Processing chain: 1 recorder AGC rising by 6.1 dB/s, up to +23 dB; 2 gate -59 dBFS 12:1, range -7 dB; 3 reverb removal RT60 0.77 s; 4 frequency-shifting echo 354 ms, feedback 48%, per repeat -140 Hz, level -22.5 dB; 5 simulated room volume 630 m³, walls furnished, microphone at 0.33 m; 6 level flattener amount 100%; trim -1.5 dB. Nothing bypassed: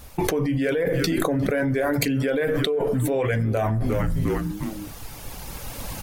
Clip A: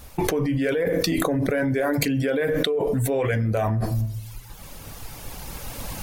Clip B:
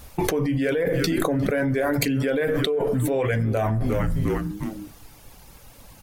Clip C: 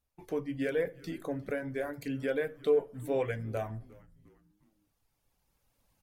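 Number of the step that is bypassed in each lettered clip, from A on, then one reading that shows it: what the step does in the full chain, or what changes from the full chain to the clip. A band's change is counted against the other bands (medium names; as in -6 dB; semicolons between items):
4, momentary loudness spread change +3 LU; 1, momentary loudness spread change -8 LU; 6, crest factor change -5.0 dB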